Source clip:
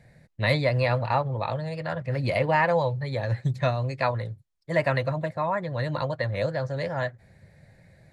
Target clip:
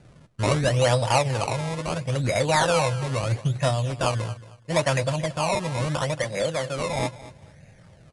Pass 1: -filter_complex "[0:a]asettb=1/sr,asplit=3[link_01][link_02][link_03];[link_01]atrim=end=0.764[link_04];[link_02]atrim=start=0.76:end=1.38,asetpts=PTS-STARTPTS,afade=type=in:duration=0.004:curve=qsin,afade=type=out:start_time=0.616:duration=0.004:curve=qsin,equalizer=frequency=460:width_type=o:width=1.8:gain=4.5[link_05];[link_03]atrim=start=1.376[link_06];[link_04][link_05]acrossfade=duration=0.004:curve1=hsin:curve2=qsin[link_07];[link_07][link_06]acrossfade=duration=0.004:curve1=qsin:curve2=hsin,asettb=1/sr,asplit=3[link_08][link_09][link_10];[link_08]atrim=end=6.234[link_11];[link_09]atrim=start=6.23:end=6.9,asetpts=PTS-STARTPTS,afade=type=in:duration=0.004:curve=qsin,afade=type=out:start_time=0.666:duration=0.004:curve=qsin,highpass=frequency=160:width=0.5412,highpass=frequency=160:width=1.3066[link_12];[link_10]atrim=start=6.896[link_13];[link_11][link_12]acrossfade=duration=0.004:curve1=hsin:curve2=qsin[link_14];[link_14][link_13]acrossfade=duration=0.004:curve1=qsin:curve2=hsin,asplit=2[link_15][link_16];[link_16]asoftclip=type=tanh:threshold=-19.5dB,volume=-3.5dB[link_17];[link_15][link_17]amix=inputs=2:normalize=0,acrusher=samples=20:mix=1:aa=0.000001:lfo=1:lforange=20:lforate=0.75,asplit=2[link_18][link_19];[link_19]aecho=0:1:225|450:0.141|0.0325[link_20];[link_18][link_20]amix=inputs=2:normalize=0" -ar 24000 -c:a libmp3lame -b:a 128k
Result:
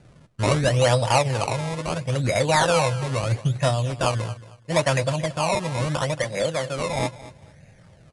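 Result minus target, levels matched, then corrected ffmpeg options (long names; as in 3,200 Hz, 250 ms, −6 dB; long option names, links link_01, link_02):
soft clipping: distortion −7 dB
-filter_complex "[0:a]asettb=1/sr,asplit=3[link_01][link_02][link_03];[link_01]atrim=end=0.764[link_04];[link_02]atrim=start=0.76:end=1.38,asetpts=PTS-STARTPTS,afade=type=in:duration=0.004:curve=qsin,afade=type=out:start_time=0.616:duration=0.004:curve=qsin,equalizer=frequency=460:width_type=o:width=1.8:gain=4.5[link_05];[link_03]atrim=start=1.376[link_06];[link_04][link_05]acrossfade=duration=0.004:curve1=hsin:curve2=qsin[link_07];[link_07][link_06]acrossfade=duration=0.004:curve1=qsin:curve2=hsin,asettb=1/sr,asplit=3[link_08][link_09][link_10];[link_08]atrim=end=6.234[link_11];[link_09]atrim=start=6.23:end=6.9,asetpts=PTS-STARTPTS,afade=type=in:duration=0.004:curve=qsin,afade=type=out:start_time=0.666:duration=0.004:curve=qsin,highpass=frequency=160:width=0.5412,highpass=frequency=160:width=1.3066[link_12];[link_10]atrim=start=6.896[link_13];[link_11][link_12]acrossfade=duration=0.004:curve1=hsin:curve2=qsin[link_14];[link_14][link_13]acrossfade=duration=0.004:curve1=qsin:curve2=hsin,asplit=2[link_15][link_16];[link_16]asoftclip=type=tanh:threshold=-29dB,volume=-3.5dB[link_17];[link_15][link_17]amix=inputs=2:normalize=0,acrusher=samples=20:mix=1:aa=0.000001:lfo=1:lforange=20:lforate=0.75,asplit=2[link_18][link_19];[link_19]aecho=0:1:225|450:0.141|0.0325[link_20];[link_18][link_20]amix=inputs=2:normalize=0" -ar 24000 -c:a libmp3lame -b:a 128k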